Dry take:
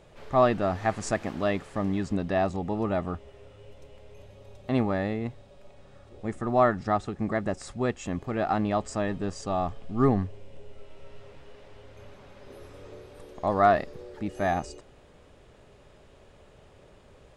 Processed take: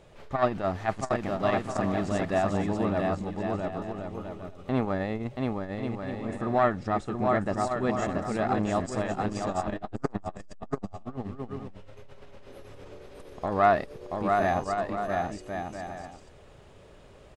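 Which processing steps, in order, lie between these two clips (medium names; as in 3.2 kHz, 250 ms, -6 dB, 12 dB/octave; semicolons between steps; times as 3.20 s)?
bouncing-ball echo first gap 680 ms, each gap 0.6×, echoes 5; transformer saturation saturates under 500 Hz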